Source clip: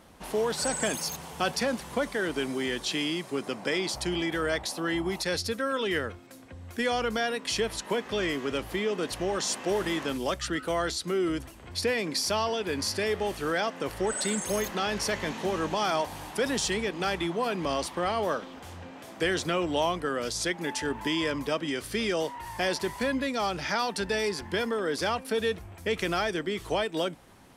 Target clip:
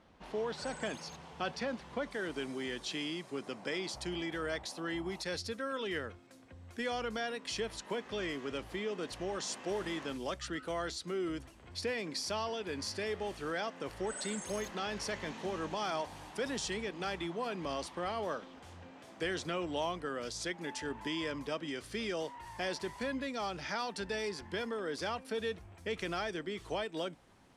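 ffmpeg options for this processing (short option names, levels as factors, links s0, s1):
-af "asetnsamples=n=441:p=0,asendcmd='2.11 lowpass f 8800',lowpass=4400,volume=0.376"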